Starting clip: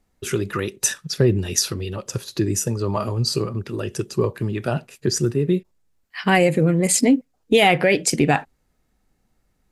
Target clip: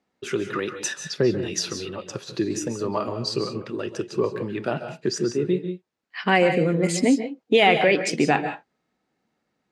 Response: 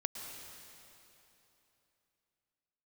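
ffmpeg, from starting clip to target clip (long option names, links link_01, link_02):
-filter_complex "[0:a]highpass=210,lowpass=4700[link_01];[1:a]atrim=start_sample=2205,afade=type=out:start_time=0.2:duration=0.01,atrim=end_sample=9261,asetrate=34839,aresample=44100[link_02];[link_01][link_02]afir=irnorm=-1:irlink=0,volume=-1.5dB"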